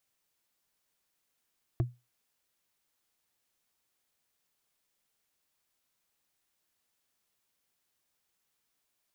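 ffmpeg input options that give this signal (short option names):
-f lavfi -i "aevalsrc='0.0891*pow(10,-3*t/0.24)*sin(2*PI*122*t)+0.0447*pow(10,-3*t/0.071)*sin(2*PI*336.4*t)+0.0224*pow(10,-3*t/0.032)*sin(2*PI*659.3*t)+0.0112*pow(10,-3*t/0.017)*sin(2*PI*1089.8*t)+0.00562*pow(10,-3*t/0.011)*sin(2*PI*1627.5*t)':d=0.45:s=44100"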